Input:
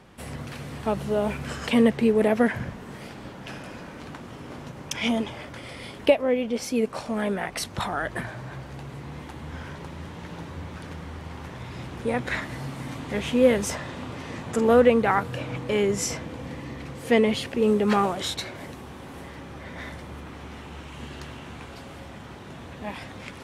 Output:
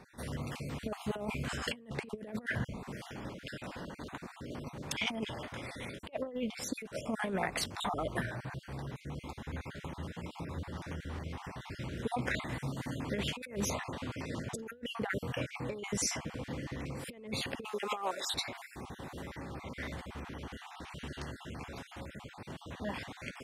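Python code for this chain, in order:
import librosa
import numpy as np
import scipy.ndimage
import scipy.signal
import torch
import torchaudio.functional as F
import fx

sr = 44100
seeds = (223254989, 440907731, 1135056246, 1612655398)

y = fx.spec_dropout(x, sr, seeds[0], share_pct=35)
y = fx.highpass(y, sr, hz=610.0, slope=12, at=(17.65, 18.3))
y = fx.over_compress(y, sr, threshold_db=-28.0, ratio=-0.5)
y = y * 10.0 ** (-6.5 / 20.0)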